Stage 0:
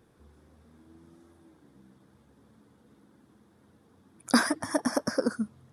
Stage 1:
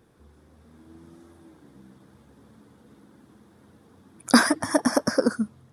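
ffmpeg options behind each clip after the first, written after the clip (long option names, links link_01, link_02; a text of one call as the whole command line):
ffmpeg -i in.wav -af "dynaudnorm=framelen=480:gausssize=3:maxgain=4dB,volume=2.5dB" out.wav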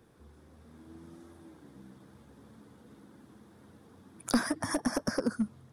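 ffmpeg -i in.wav -filter_complex "[0:a]acrossover=split=190[link_01][link_02];[link_02]acompressor=threshold=-27dB:ratio=6[link_03];[link_01][link_03]amix=inputs=2:normalize=0,aeval=exprs='clip(val(0),-1,0.0841)':channel_layout=same,volume=-1.5dB" out.wav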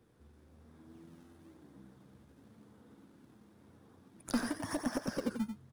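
ffmpeg -i in.wav -filter_complex "[0:a]asplit=2[link_01][link_02];[link_02]acrusher=samples=22:mix=1:aa=0.000001:lfo=1:lforange=35.2:lforate=0.97,volume=-6dB[link_03];[link_01][link_03]amix=inputs=2:normalize=0,aecho=1:1:91:0.422,volume=-8.5dB" out.wav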